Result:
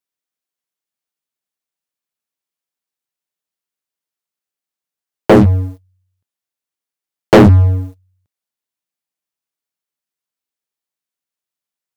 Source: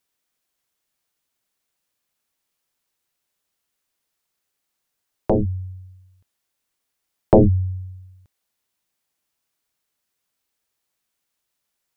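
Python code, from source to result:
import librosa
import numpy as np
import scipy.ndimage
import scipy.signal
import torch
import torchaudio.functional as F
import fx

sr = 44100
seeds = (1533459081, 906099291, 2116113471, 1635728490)

y = scipy.signal.sosfilt(scipy.signal.butter(2, 110.0, 'highpass', fs=sr, output='sos'), x)
y = fx.leveller(y, sr, passes=5)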